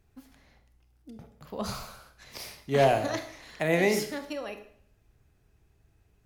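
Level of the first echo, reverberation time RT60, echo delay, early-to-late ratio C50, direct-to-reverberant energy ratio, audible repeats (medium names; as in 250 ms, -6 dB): no echo, 0.60 s, no echo, 10.5 dB, 8.0 dB, no echo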